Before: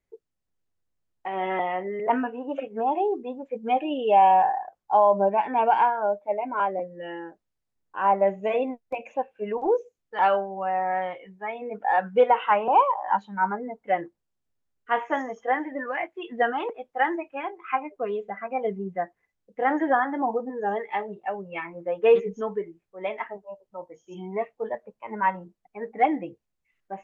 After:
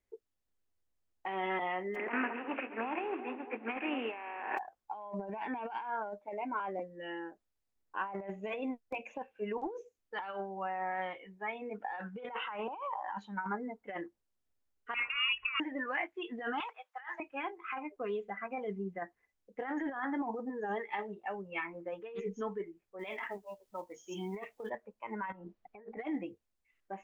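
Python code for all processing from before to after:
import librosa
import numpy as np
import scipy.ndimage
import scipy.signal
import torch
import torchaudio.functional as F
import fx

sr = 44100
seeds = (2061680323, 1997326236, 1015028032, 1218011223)

y = fx.spec_flatten(x, sr, power=0.47, at=(1.94, 4.57), fade=0.02)
y = fx.cheby1_bandpass(y, sr, low_hz=230.0, high_hz=2600.0, order=5, at=(1.94, 4.57), fade=0.02)
y = fx.echo_split(y, sr, split_hz=1400.0, low_ms=210, high_ms=135, feedback_pct=52, wet_db=-14, at=(1.94, 4.57), fade=0.02)
y = fx.chain(y, sr, fx.peak_eq(hz=190.0, db=10.5, octaves=0.46),
    fx.over_compress(threshold_db=-31.0, ratio=-1.0),
    fx.freq_invert(carrier_hz=3100), at=(14.94, 15.6))
y = fx.chain(y, sr, fx.highpass(hz=940.0, slope=24),
    fx.high_shelf(hz=2700.0, db=-5.5),
    fx.over_compress(threshold_db=-39.0, ratio=-1.0), at=(16.6, 17.2))
y = fx.chain(y, sr, fx.high_shelf(hz=3100.0, db=10.5),
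    fx.quant_companded(bits=8),
    fx.over_compress(threshold_db=-33.0, ratio=-1.0), at=(22.99, 24.7))
y = fx.chain(y, sr, fx.over_compress(threshold_db=-46.0, ratio=-1.0),
    fx.air_absorb(metres=170.0), at=(25.32, 25.97))
y = fx.peak_eq(y, sr, hz=150.0, db=-13.5, octaves=0.35)
y = fx.over_compress(y, sr, threshold_db=-27.0, ratio=-1.0)
y = fx.dynamic_eq(y, sr, hz=600.0, q=1.3, threshold_db=-41.0, ratio=4.0, max_db=-8)
y = F.gain(torch.from_numpy(y), -6.0).numpy()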